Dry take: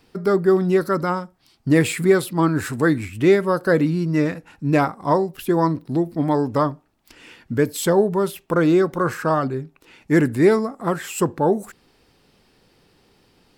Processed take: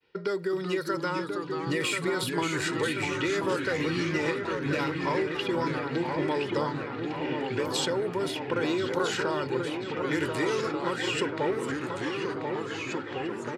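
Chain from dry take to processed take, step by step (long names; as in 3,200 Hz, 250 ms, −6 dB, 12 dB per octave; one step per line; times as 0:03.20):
low-pass that shuts in the quiet parts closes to 2,200 Hz, open at −14.5 dBFS
meter weighting curve D
downward expander −51 dBFS
comb filter 2.1 ms, depth 61%
brickwall limiter −10 dBFS, peak gain reduction 9 dB
downward compressor 4 to 1, threshold −22 dBFS, peak gain reduction 7.5 dB
delay with a low-pass on its return 1,035 ms, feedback 65%, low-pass 2,800 Hz, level −6 dB
delay with pitch and tempo change per echo 356 ms, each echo −2 semitones, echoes 3, each echo −6 dB
level −5 dB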